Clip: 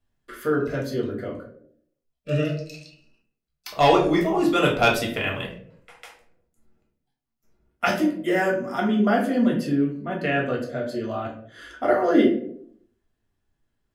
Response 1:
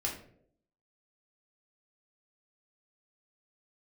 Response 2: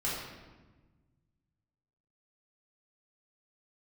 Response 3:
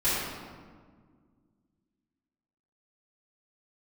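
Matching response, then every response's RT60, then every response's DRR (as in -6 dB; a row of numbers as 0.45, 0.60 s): 1; 0.65, 1.3, 1.7 s; -2.5, -7.5, -13.5 dB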